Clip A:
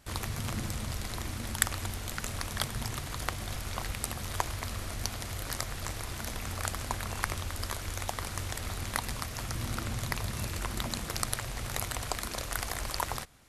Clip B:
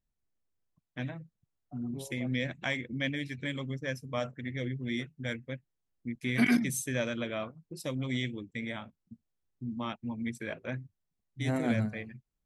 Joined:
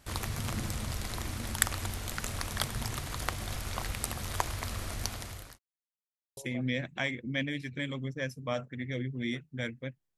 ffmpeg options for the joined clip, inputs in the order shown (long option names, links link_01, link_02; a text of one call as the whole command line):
ffmpeg -i cue0.wav -i cue1.wav -filter_complex "[0:a]apad=whole_dur=10.17,atrim=end=10.17,asplit=2[link_01][link_02];[link_01]atrim=end=5.59,asetpts=PTS-STARTPTS,afade=type=out:start_time=4.87:duration=0.72:curve=qsin[link_03];[link_02]atrim=start=5.59:end=6.37,asetpts=PTS-STARTPTS,volume=0[link_04];[1:a]atrim=start=2.03:end=5.83,asetpts=PTS-STARTPTS,afade=type=in:duration=0.004:curve=hsin[link_05];[link_03][link_04][link_05]concat=n=3:v=0:a=1" out.wav